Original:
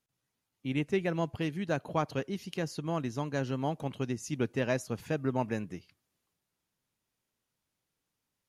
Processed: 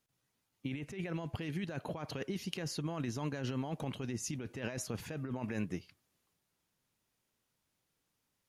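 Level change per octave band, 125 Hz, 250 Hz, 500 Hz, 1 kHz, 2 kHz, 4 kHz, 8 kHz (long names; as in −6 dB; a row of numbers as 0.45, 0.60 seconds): −4.5, −5.0, −9.5, −9.5, −6.5, −1.0, +2.0 decibels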